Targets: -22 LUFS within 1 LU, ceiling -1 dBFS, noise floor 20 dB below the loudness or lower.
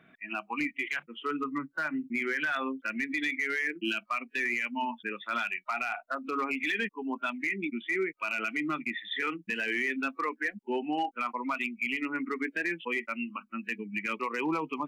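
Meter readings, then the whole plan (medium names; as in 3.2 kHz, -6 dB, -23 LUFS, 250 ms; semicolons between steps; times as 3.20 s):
clipped samples 0.4%; clipping level -23.0 dBFS; loudness -32.0 LUFS; peak level -23.0 dBFS; loudness target -22.0 LUFS
-> clip repair -23 dBFS; trim +10 dB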